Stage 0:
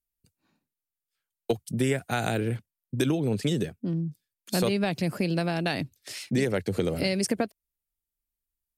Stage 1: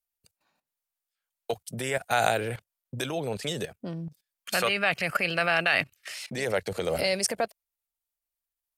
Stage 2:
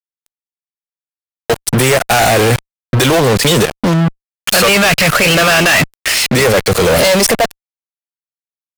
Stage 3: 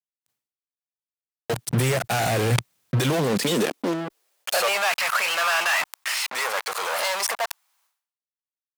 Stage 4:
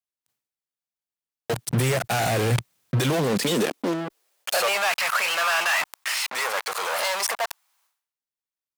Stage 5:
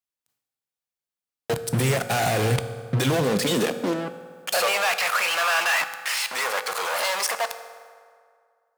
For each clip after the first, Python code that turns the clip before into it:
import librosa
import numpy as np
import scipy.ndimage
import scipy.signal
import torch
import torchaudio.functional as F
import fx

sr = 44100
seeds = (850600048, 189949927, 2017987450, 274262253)

y1 = fx.spec_box(x, sr, start_s=4.45, length_s=1.69, low_hz=1100.0, high_hz=3200.0, gain_db=10)
y1 = fx.level_steps(y1, sr, step_db=16)
y1 = fx.low_shelf_res(y1, sr, hz=430.0, db=-10.5, q=1.5)
y1 = F.gain(torch.from_numpy(y1), 9.0).numpy()
y2 = fx.fuzz(y1, sr, gain_db=45.0, gate_db=-42.0)
y2 = F.gain(torch.from_numpy(y2), 5.0).numpy()
y3 = fx.filter_sweep_highpass(y2, sr, from_hz=120.0, to_hz=960.0, start_s=2.85, end_s=5.0, q=2.2)
y3 = fx.sustainer(y3, sr, db_per_s=110.0)
y3 = F.gain(torch.from_numpy(y3), -13.5).numpy()
y4 = 10.0 ** (-9.5 / 20.0) * np.tanh(y3 / 10.0 ** (-9.5 / 20.0))
y5 = fx.rev_fdn(y4, sr, rt60_s=2.1, lf_ratio=0.85, hf_ratio=0.6, size_ms=12.0, drr_db=9.0)